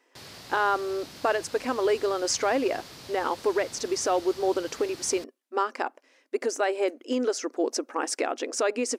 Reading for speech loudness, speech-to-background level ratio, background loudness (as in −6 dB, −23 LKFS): −28.0 LKFS, 15.5 dB, −43.5 LKFS